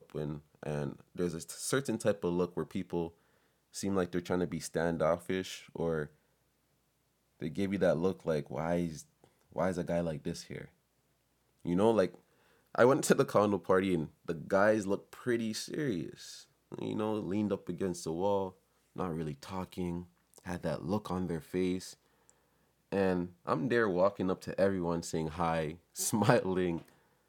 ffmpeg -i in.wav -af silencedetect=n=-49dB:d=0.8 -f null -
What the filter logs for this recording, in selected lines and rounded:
silence_start: 6.07
silence_end: 7.40 | silence_duration: 1.33
silence_start: 10.67
silence_end: 11.65 | silence_duration: 0.97